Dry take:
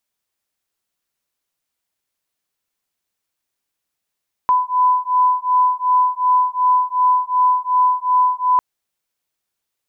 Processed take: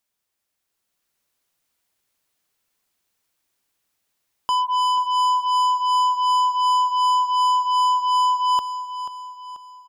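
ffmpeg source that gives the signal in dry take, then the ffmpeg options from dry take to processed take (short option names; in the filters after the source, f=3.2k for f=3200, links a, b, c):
-f lavfi -i "aevalsrc='0.158*(sin(2*PI*1000*t)+sin(2*PI*1002.7*t))':d=4.1:s=44100"
-af "dynaudnorm=f=110:g=17:m=5dB,asoftclip=type=tanh:threshold=-18.5dB,aecho=1:1:486|972|1458|1944|2430:0.266|0.122|0.0563|0.0259|0.0119"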